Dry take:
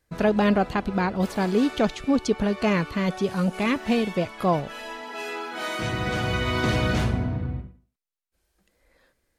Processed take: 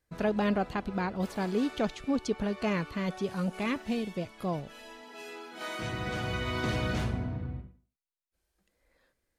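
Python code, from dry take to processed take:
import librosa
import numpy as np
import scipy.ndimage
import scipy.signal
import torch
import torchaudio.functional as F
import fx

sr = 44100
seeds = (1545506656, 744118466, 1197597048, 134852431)

y = fx.peak_eq(x, sr, hz=1200.0, db=-6.5, octaves=2.5, at=(3.82, 5.61))
y = F.gain(torch.from_numpy(y), -7.5).numpy()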